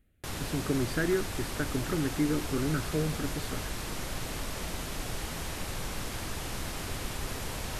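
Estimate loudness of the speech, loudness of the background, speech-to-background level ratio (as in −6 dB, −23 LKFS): −32.5 LKFS, −36.5 LKFS, 4.0 dB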